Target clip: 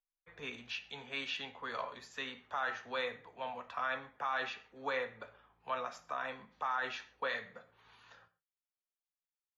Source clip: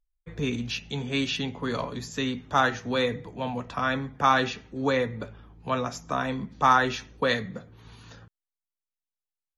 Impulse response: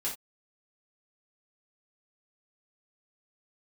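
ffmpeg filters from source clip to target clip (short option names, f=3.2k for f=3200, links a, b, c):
-filter_complex "[0:a]acrossover=split=580 3400:gain=0.0891 1 0.224[a][b][c];[a][b][c]amix=inputs=3:normalize=0,alimiter=limit=-20.5dB:level=0:latency=1:release=38,asplit=2[d][e];[1:a]atrim=start_sample=2205,asetrate=28665,aresample=44100[f];[e][f]afir=irnorm=-1:irlink=0,volume=-16dB[g];[d][g]amix=inputs=2:normalize=0,volume=-6.5dB"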